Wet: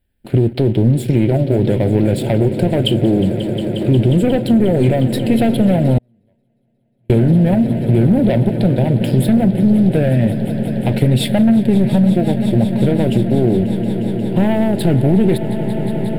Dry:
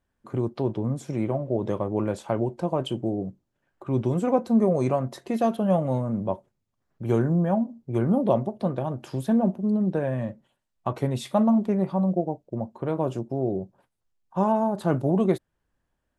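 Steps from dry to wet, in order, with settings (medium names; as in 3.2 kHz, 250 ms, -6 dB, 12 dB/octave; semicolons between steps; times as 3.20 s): in parallel at -3 dB: peak limiter -20 dBFS, peak gain reduction 11.5 dB; on the sum: waveshaping leveller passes 2; treble shelf 3.8 kHz +8 dB; on a send: echo with a slow build-up 179 ms, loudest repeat 5, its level -16 dB; 5.98–7.10 s: on the sum: gate -4 dBFS, range -46 dB; compression, threshold -14 dBFS, peak gain reduction 5 dB; bass shelf 91 Hz +8 dB; static phaser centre 2.7 kHz, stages 4; loudspeaker Doppler distortion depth 0.11 ms; trim +4.5 dB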